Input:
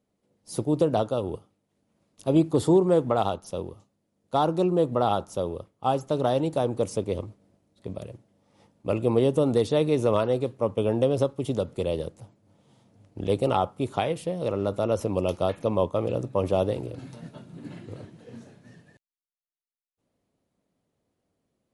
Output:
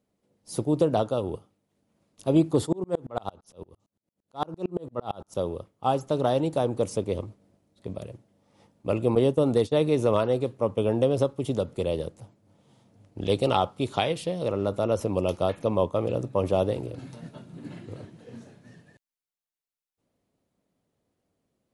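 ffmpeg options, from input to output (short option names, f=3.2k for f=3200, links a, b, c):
-filter_complex "[0:a]asplit=3[a][b][c];[a]afade=t=out:st=2.65:d=0.02[d];[b]aeval=exprs='val(0)*pow(10,-35*if(lt(mod(-8.8*n/s,1),2*abs(-8.8)/1000),1-mod(-8.8*n/s,1)/(2*abs(-8.8)/1000),(mod(-8.8*n/s,1)-2*abs(-8.8)/1000)/(1-2*abs(-8.8)/1000))/20)':c=same,afade=t=in:st=2.65:d=0.02,afade=t=out:st=5.34:d=0.02[e];[c]afade=t=in:st=5.34:d=0.02[f];[d][e][f]amix=inputs=3:normalize=0,asettb=1/sr,asplit=3[g][h][i];[g]atrim=end=9.154[j];[h]atrim=start=9.15:end=9.76,asetpts=PTS-STARTPTS,afade=t=in:d=0.004:c=qsin,afade=t=out:st=0.606:d=0.004:c=qsin,agate=range=-33dB:threshold=-26dB:ratio=3:release=100:detection=peak[k];[i]atrim=start=9.756[l];[j][k]acrossfade=d=0.004:c1=hsin:c2=qsin[m];[m][l]acrossfade=d=0.004:c1=qsin:c2=hsin,asettb=1/sr,asplit=3[n][o][p];[n]atrim=end=13.214[q];[o]atrim=start=13.21:end=14.43,asetpts=PTS-STARTPTS,afade=t=in:d=0.004:c=qsin,afade=t=out:st=1.216:d=0.004:c=qsin,equalizer=f=4k:w=0.91:g=7.5[r];[p]atrim=start=14.426[s];[q][r]acrossfade=d=0.004:c1=hsin:c2=qsin[t];[t][s]acrossfade=d=0.004:c1=qsin:c2=hsin"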